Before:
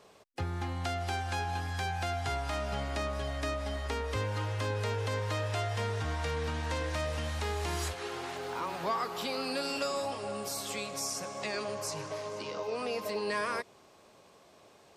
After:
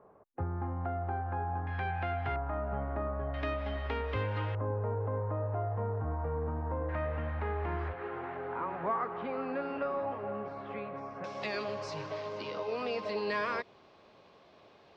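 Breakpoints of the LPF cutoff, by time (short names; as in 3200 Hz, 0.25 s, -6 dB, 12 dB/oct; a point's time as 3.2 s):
LPF 24 dB/oct
1300 Hz
from 1.67 s 2400 Hz
from 2.36 s 1400 Hz
from 3.34 s 3100 Hz
from 4.55 s 1100 Hz
from 6.89 s 1900 Hz
from 11.24 s 4400 Hz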